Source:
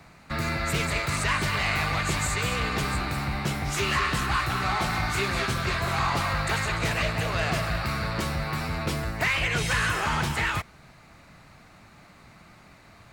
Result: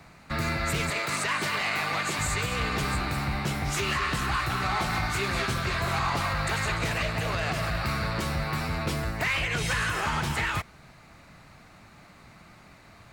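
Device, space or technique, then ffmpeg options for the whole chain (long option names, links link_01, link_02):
limiter into clipper: -filter_complex "[0:a]asettb=1/sr,asplit=3[link_01][link_02][link_03];[link_01]atrim=end=0.904[link_04];[link_02]atrim=start=0.9:end=2.19,asetpts=PTS-STARTPTS,afade=type=in:duration=0.004:curve=qsin,afade=type=out:start_time=1.286:duration=0.004:curve=qsin,highpass=210[link_05];[link_03]atrim=start=2.186[link_06];[link_04][link_05]acrossfade=duration=0.004:curve1=hsin:curve2=qsin[link_07];[link_07][link_06]acrossfade=duration=0.004:curve1=qsin:curve2=hsin,alimiter=limit=-17.5dB:level=0:latency=1:release=118,asoftclip=type=hard:threshold=-19dB"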